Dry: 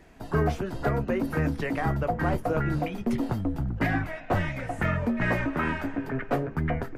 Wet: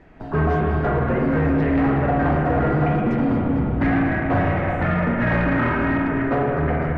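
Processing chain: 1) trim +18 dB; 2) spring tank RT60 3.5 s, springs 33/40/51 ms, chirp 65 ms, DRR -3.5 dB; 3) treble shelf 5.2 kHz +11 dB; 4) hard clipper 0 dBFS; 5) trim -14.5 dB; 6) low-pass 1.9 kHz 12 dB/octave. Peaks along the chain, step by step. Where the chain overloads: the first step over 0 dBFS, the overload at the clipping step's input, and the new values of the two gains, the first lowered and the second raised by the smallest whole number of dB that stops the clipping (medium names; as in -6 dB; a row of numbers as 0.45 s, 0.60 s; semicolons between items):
+5.0 dBFS, +8.5 dBFS, +9.0 dBFS, 0.0 dBFS, -14.5 dBFS, -14.0 dBFS; step 1, 9.0 dB; step 1 +9 dB, step 5 -5.5 dB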